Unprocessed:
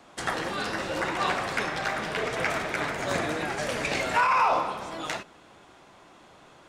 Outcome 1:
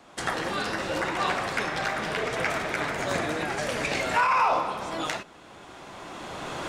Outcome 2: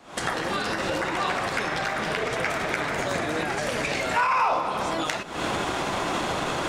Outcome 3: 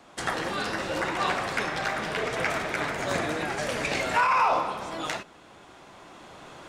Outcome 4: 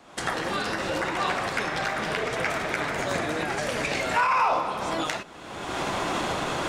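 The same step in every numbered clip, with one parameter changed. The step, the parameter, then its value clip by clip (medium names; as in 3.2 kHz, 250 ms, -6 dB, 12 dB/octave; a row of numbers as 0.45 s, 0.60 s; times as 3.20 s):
recorder AGC, rising by: 13 dB/s, 91 dB/s, 5.3 dB/s, 36 dB/s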